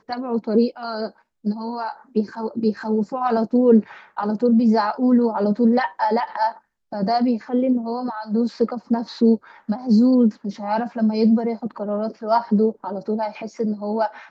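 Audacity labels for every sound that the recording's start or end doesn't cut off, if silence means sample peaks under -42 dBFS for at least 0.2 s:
1.440000	6.580000	sound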